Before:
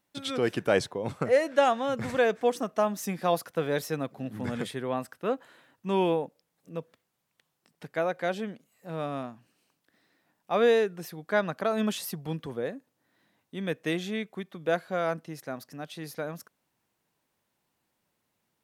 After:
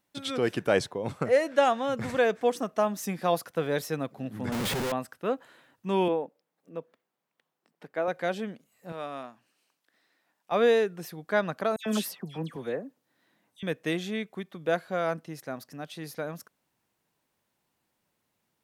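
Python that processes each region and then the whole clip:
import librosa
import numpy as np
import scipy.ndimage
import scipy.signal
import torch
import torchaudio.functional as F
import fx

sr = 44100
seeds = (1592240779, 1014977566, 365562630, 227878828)

y = fx.chain(x, sr, fx.peak_eq(hz=84.0, db=4.0, octaves=1.5),
    fx.leveller(passes=1),
    fx.schmitt(flips_db=-44.5), at=(4.52, 4.92))
y = fx.chain(y, sr, fx.highpass(hz=240.0, slope=12),
    fx.peak_eq(hz=9500.0, db=-10.5, octaves=3.0), at=(6.08, 8.08))
y = fx.chain(y, sr, fx.highpass(hz=640.0, slope=6),
    fx.high_shelf(hz=11000.0, db=-4.0), at=(8.92, 10.52))
y = fx.chain(y, sr, fx.highpass(hz=130.0, slope=12),
    fx.dispersion(late='lows', ms=101.0, hz=2400.0), at=(11.76, 13.63))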